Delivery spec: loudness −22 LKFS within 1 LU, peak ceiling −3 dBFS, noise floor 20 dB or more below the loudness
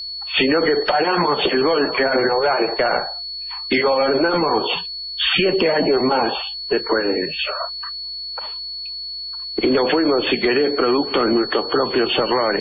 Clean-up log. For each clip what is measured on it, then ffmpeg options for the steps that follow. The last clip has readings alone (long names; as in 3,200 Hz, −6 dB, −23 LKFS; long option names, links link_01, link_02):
interfering tone 4,400 Hz; level of the tone −27 dBFS; integrated loudness −19.0 LKFS; sample peak −5.5 dBFS; target loudness −22.0 LKFS
→ -af "bandreject=frequency=4400:width=30"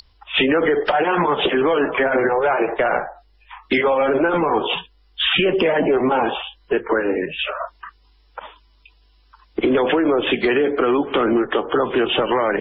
interfering tone none found; integrated loudness −19.0 LKFS; sample peak −6.0 dBFS; target loudness −22.0 LKFS
→ -af "volume=-3dB"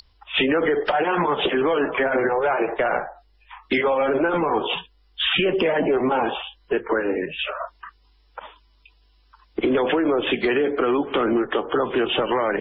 integrated loudness −22.0 LKFS; sample peak −9.0 dBFS; background noise floor −59 dBFS